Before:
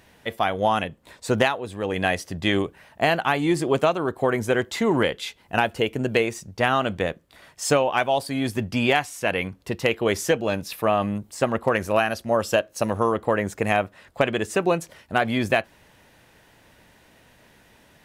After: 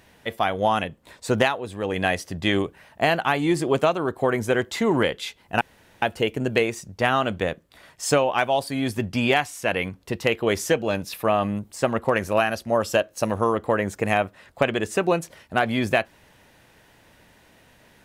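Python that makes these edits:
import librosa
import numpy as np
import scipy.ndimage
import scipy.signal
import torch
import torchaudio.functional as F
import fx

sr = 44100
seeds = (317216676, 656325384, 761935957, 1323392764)

y = fx.edit(x, sr, fx.insert_room_tone(at_s=5.61, length_s=0.41), tone=tone)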